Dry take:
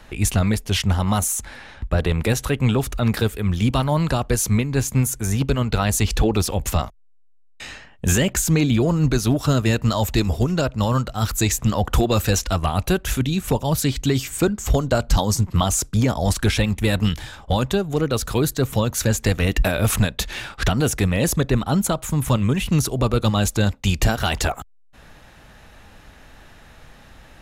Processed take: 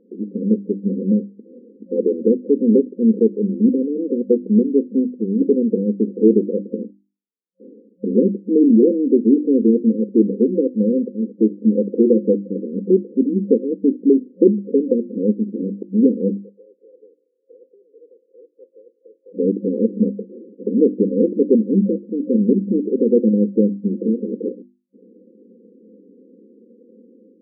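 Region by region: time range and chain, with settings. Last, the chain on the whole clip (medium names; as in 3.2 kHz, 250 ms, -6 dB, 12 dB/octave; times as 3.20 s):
16.39–19.34 s: spectral peaks clipped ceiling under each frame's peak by 22 dB + high-pass 990 Hz 24 dB/octave
whole clip: hum notches 50/100/150/200/250/300/350 Hz; FFT band-pass 190–530 Hz; level rider gain up to 7 dB; trim +2.5 dB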